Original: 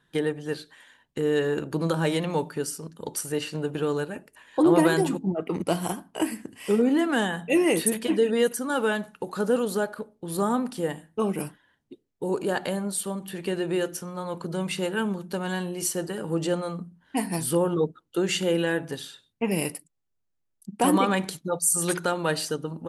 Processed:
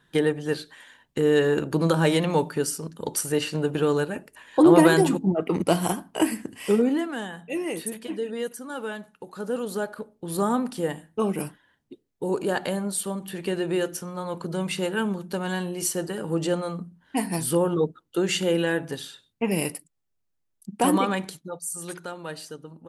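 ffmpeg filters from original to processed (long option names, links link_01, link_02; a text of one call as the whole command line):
ffmpeg -i in.wav -af "volume=13dB,afade=type=out:start_time=6.57:duration=0.56:silence=0.251189,afade=type=in:start_time=9.34:duration=0.91:silence=0.354813,afade=type=out:start_time=20.78:duration=0.84:silence=0.281838" out.wav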